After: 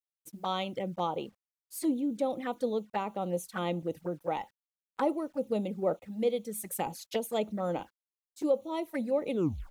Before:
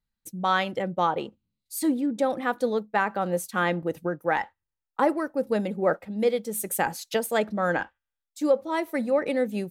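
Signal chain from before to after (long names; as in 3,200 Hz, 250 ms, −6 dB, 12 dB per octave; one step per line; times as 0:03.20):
turntable brake at the end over 0.41 s
bit reduction 10 bits
flanger swept by the level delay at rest 11.3 ms, full sweep at −23.5 dBFS
level −4.5 dB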